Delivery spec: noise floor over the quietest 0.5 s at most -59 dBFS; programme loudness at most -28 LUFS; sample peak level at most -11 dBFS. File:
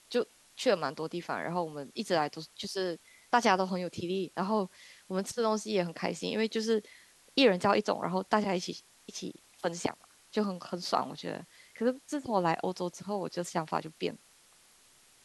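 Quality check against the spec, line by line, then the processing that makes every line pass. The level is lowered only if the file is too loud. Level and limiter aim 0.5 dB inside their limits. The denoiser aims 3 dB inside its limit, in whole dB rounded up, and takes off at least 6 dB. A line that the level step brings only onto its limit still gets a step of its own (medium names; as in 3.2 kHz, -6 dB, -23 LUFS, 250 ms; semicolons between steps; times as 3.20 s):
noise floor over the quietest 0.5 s -62 dBFS: pass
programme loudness -32.5 LUFS: pass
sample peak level -10.0 dBFS: fail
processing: peak limiter -11.5 dBFS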